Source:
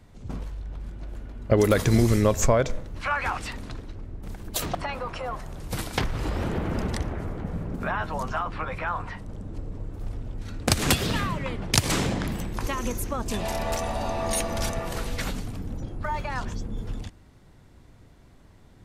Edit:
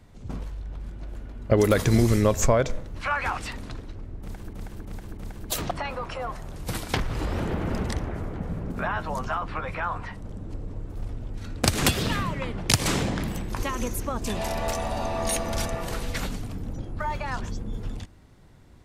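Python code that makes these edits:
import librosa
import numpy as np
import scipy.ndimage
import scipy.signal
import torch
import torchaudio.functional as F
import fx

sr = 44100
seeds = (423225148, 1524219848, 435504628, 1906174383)

y = fx.edit(x, sr, fx.repeat(start_s=4.21, length_s=0.32, count=4), tone=tone)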